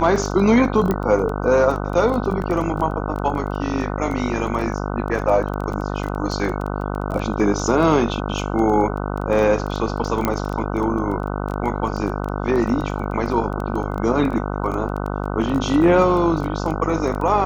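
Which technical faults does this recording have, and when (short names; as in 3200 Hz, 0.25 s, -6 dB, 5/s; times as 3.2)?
buzz 50 Hz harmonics 30 -25 dBFS
crackle 15/s -25 dBFS
0.91 pop -9 dBFS
2.42 gap 2.1 ms
10.25 pop -6 dBFS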